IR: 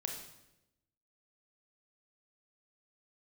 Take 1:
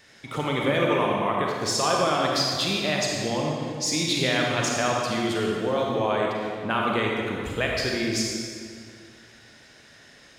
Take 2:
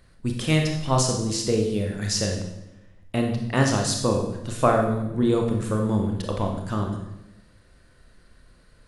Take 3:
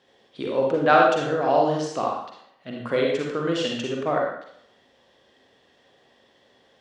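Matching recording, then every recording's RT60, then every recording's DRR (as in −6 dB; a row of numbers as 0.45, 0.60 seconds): 2; 2.2, 0.90, 0.70 seconds; −1.5, 2.0, −1.5 decibels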